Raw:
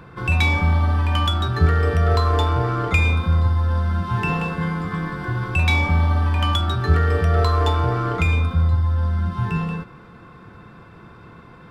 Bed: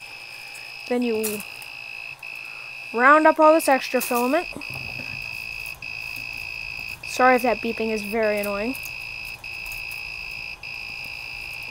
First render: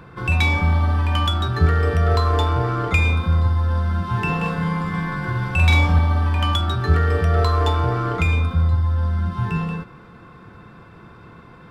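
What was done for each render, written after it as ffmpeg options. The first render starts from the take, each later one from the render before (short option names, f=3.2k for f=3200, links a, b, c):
-filter_complex "[0:a]asettb=1/sr,asplit=3[a][b][c];[a]atrim=end=4.384[d];[b]atrim=start=4.38:end=5.99,asetpts=PTS-STARTPTS,afade=t=in:d=0.004:c=qsin,afade=t=out:st=1.606:d=0.004:c=qsin,asplit=2[e][f];[f]adelay=47,volume=-2dB[g];[e][g]amix=inputs=2:normalize=0,atrim=end_sample=71001[h];[c]atrim=start=5.986[i];[d][h]acrossfade=d=0.004:c1=hsin:c2=qsin[j];[j][i]acrossfade=d=0.004:c1=qsin:c2=hsin"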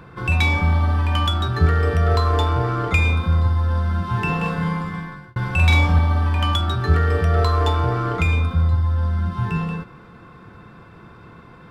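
-filter_complex "[0:a]asplit=2[a][b];[a]atrim=end=5.36,asetpts=PTS-STARTPTS,afade=t=out:st=4.68:d=0.68[c];[b]atrim=start=5.36,asetpts=PTS-STARTPTS,afade=t=in:d=0.004:c=hsin[d];[c][d]concat=n=2:v=0:a=1"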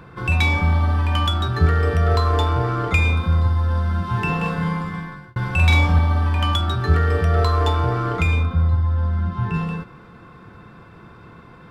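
-filter_complex "[0:a]asettb=1/sr,asplit=3[a][b][c];[a]atrim=end=8.434[d];[b]atrim=start=8.43:end=9.54,asetpts=PTS-STARTPTS,afade=t=in:d=0.004:c=qsin,afade=t=out:st=1.106:d=0.004:c=qsin,lowpass=f=2.9k:p=1[e];[c]atrim=start=9.536[f];[d][e]acrossfade=d=0.004:c1=hsin:c2=qsin[g];[g][f]acrossfade=d=0.004:c1=qsin:c2=hsin"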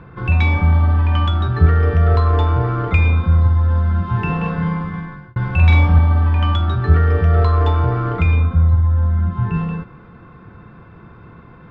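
-af "lowpass=2.8k,lowshelf=f=200:g=5.5"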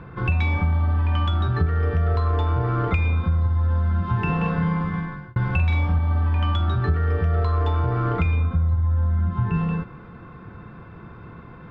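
-af "acompressor=threshold=-18dB:ratio=6"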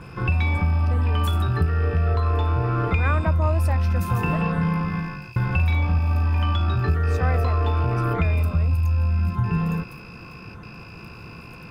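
-filter_complex "[1:a]volume=-13.5dB[a];[0:a][a]amix=inputs=2:normalize=0"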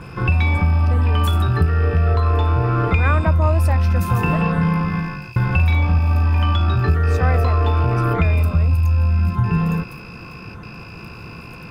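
-af "volume=4.5dB"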